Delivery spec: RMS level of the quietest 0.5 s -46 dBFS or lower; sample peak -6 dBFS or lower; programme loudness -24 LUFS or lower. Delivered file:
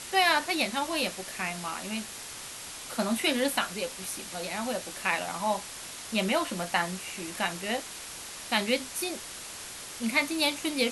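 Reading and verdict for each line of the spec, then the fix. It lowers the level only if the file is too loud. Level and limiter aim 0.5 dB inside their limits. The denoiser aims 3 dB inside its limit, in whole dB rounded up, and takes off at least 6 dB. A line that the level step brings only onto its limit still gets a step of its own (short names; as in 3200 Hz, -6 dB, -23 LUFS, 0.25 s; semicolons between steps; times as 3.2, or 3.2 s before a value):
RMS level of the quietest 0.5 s -42 dBFS: fail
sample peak -10.0 dBFS: OK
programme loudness -30.0 LUFS: OK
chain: denoiser 7 dB, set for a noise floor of -42 dBFS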